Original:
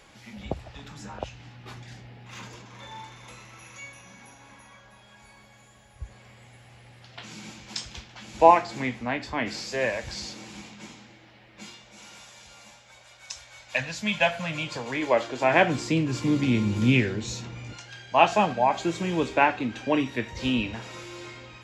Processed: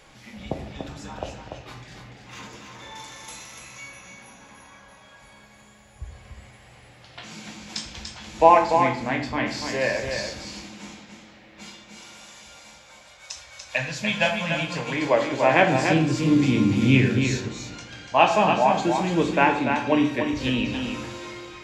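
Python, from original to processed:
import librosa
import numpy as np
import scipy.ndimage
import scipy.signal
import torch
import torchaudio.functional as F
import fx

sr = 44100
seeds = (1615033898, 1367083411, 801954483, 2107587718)

y = fx.bass_treble(x, sr, bass_db=-2, treble_db=12, at=(2.95, 3.59))
y = y + 10.0 ** (-6.0 / 20.0) * np.pad(y, (int(291 * sr / 1000.0), 0))[:len(y)]
y = fx.room_shoebox(y, sr, seeds[0], volume_m3=130.0, walls='mixed', distance_m=0.49)
y = y * 10.0 ** (1.0 / 20.0)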